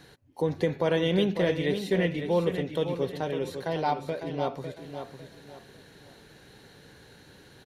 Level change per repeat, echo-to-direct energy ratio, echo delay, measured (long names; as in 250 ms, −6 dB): −10.0 dB, −8.0 dB, 552 ms